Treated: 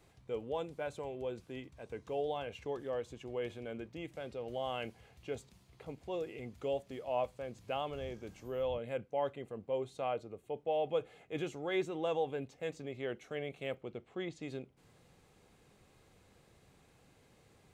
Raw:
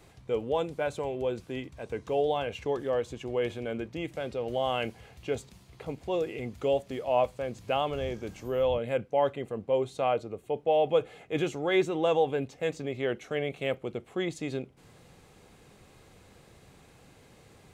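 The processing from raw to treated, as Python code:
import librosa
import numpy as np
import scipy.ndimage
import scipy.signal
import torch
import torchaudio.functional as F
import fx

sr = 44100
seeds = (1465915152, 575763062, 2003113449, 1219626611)

y = fx.lowpass(x, sr, hz=5600.0, slope=12, at=(13.81, 14.42))
y = F.gain(torch.from_numpy(y), -9.0).numpy()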